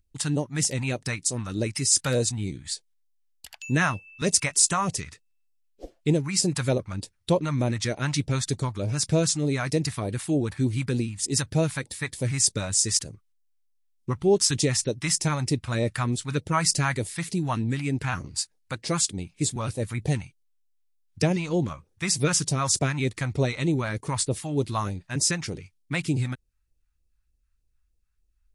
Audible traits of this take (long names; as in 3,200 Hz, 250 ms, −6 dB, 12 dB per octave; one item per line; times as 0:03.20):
phaser sweep stages 2, 3.3 Hz, lowest notch 380–1,400 Hz